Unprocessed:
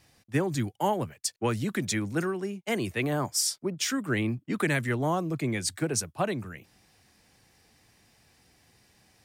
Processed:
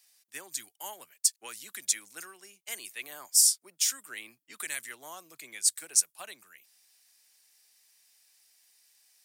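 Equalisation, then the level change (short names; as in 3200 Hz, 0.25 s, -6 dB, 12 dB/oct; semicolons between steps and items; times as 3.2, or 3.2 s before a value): HPF 330 Hz 6 dB/oct; differentiator; dynamic EQ 8600 Hz, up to +5 dB, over -46 dBFS, Q 0.81; +2.5 dB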